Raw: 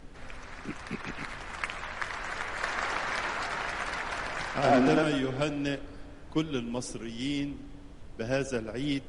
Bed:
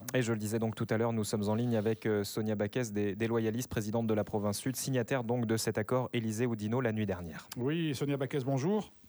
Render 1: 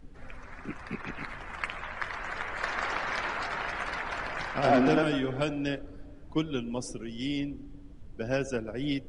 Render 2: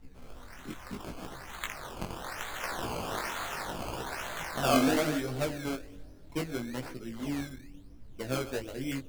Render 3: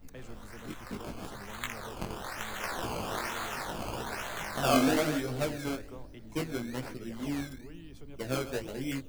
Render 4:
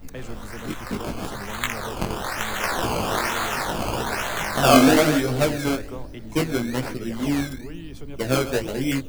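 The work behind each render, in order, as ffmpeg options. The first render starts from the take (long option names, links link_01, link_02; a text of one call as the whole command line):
ffmpeg -i in.wav -af "afftdn=noise_reduction=10:noise_floor=-46" out.wav
ffmpeg -i in.wav -af "acrusher=samples=16:mix=1:aa=0.000001:lfo=1:lforange=16:lforate=1.1,flanger=delay=15:depth=7.9:speed=0.73" out.wav
ffmpeg -i in.wav -i bed.wav -filter_complex "[1:a]volume=-17.5dB[link_01];[0:a][link_01]amix=inputs=2:normalize=0" out.wav
ffmpeg -i in.wav -af "volume=11dB" out.wav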